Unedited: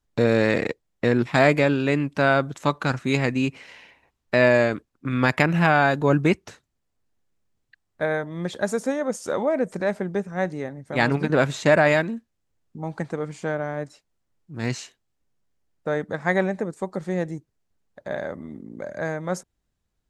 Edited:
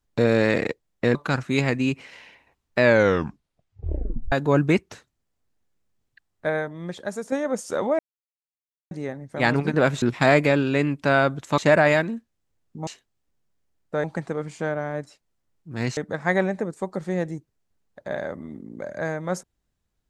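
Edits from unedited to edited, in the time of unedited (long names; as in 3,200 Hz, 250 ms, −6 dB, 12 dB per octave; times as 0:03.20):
0:01.15–0:02.71: move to 0:11.58
0:04.38: tape stop 1.50 s
0:08.03–0:08.88: fade out quadratic, to −6.5 dB
0:09.55–0:10.47: silence
0:14.80–0:15.97: move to 0:12.87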